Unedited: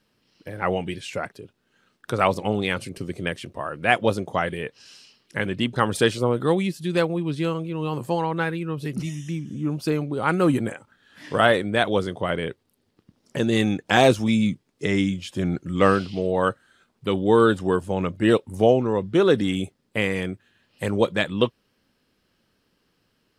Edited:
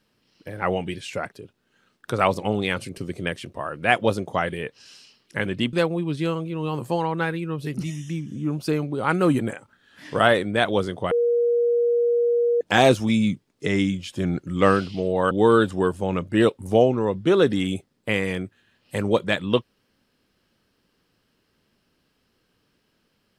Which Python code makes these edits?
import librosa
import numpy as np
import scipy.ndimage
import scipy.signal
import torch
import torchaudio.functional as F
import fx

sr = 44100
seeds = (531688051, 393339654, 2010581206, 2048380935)

y = fx.edit(x, sr, fx.cut(start_s=5.73, length_s=1.19),
    fx.bleep(start_s=12.3, length_s=1.5, hz=475.0, db=-17.0),
    fx.cut(start_s=16.5, length_s=0.69), tone=tone)